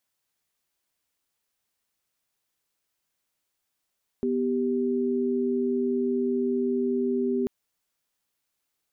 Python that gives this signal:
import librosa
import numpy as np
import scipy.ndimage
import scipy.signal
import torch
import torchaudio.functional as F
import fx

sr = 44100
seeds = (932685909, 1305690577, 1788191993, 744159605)

y = fx.chord(sr, length_s=3.24, notes=(59, 67), wave='sine', level_db=-25.5)